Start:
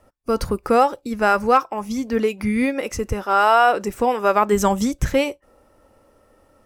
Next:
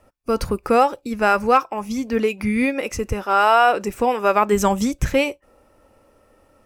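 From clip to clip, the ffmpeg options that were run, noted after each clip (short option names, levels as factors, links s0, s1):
-af "equalizer=f=2500:t=o:w=0.26:g=5.5"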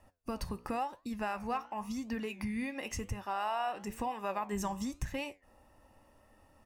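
-af "aecho=1:1:1.1:0.55,acompressor=threshold=0.0355:ratio=3,flanger=delay=8.5:depth=9.9:regen=80:speed=0.95:shape=triangular,volume=0.708"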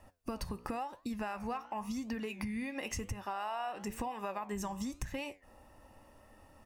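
-af "acompressor=threshold=0.0112:ratio=6,volume=1.58"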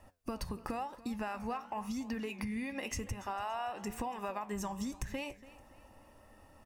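-af "aecho=1:1:285|570|855:0.119|0.0452|0.0172"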